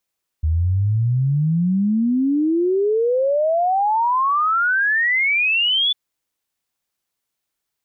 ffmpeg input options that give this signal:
ffmpeg -f lavfi -i "aevalsrc='0.178*clip(min(t,5.5-t)/0.01,0,1)*sin(2*PI*76*5.5/log(3500/76)*(exp(log(3500/76)*t/5.5)-1))':duration=5.5:sample_rate=44100" out.wav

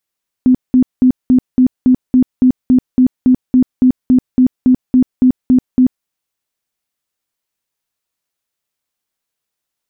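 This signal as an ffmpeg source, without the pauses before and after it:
ffmpeg -f lavfi -i "aevalsrc='0.562*sin(2*PI*254*mod(t,0.28))*lt(mod(t,0.28),22/254)':duration=5.6:sample_rate=44100" out.wav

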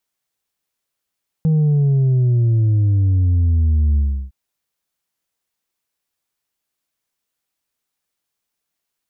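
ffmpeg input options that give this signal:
ffmpeg -f lavfi -i "aevalsrc='0.237*clip((2.86-t)/0.34,0,1)*tanh(1.41*sin(2*PI*160*2.86/log(65/160)*(exp(log(65/160)*t/2.86)-1)))/tanh(1.41)':duration=2.86:sample_rate=44100" out.wav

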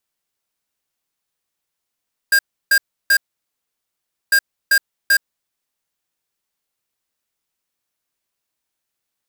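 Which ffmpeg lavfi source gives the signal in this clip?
ffmpeg -f lavfi -i "aevalsrc='0.237*(2*lt(mod(1610*t,1),0.5)-1)*clip(min(mod(mod(t,2),0.39),0.07-mod(mod(t,2),0.39))/0.005,0,1)*lt(mod(t,2),1.17)':duration=4:sample_rate=44100" out.wav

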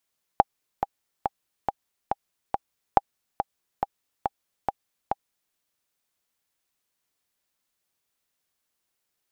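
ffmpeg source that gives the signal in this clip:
ffmpeg -f lavfi -i "aevalsrc='pow(10,(-2-8.5*gte(mod(t,6*60/140),60/140))/20)*sin(2*PI*802*mod(t,60/140))*exp(-6.91*mod(t,60/140)/0.03)':duration=5.14:sample_rate=44100" out.wav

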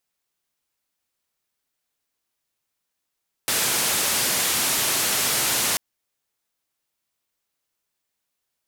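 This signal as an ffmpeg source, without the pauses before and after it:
ffmpeg -f lavfi -i "anoisesrc=color=white:duration=2.29:sample_rate=44100:seed=1,highpass=frequency=93,lowpass=frequency=13000,volume=-15.3dB" out.wav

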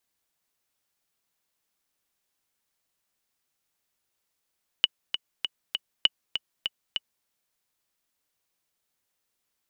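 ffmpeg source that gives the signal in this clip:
ffmpeg -f lavfi -i "aevalsrc='pow(10,(-5-9*gte(mod(t,4*60/198),60/198))/20)*sin(2*PI*2950*mod(t,60/198))*exp(-6.91*mod(t,60/198)/0.03)':duration=2.42:sample_rate=44100" out.wav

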